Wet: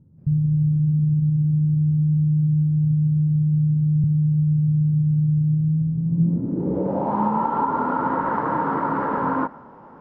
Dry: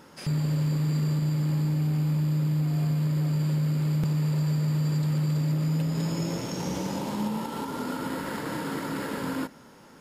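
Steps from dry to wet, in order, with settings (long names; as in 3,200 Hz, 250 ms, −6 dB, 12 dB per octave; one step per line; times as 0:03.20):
dynamic equaliser 1,300 Hz, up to +6 dB, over −49 dBFS, Q 0.95
low-pass filter sweep 120 Hz → 1,000 Hz, 0:06.03–0:07.22
level +4.5 dB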